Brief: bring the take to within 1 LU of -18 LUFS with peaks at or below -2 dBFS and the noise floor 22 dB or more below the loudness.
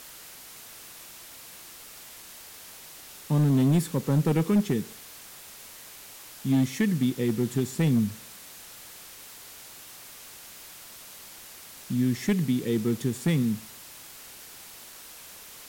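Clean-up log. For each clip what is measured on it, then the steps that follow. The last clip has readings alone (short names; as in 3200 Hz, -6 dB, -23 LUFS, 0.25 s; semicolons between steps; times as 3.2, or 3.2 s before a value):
clipped 0.8%; flat tops at -17.0 dBFS; noise floor -46 dBFS; noise floor target -48 dBFS; loudness -26.0 LUFS; peak -17.0 dBFS; loudness target -18.0 LUFS
-> clip repair -17 dBFS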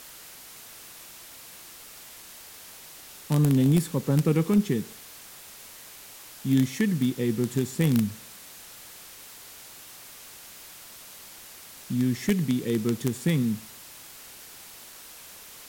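clipped 0.0%; noise floor -46 dBFS; noise floor target -48 dBFS
-> denoiser 6 dB, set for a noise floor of -46 dBFS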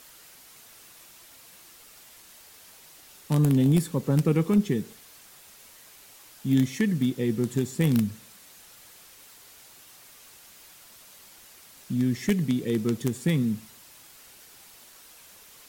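noise floor -52 dBFS; loudness -25.5 LUFS; peak -8.5 dBFS; loudness target -18.0 LUFS
-> gain +7.5 dB; limiter -2 dBFS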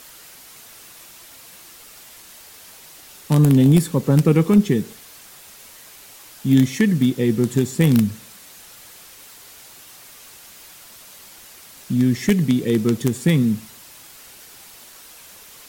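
loudness -18.0 LUFS; peak -2.0 dBFS; noise floor -44 dBFS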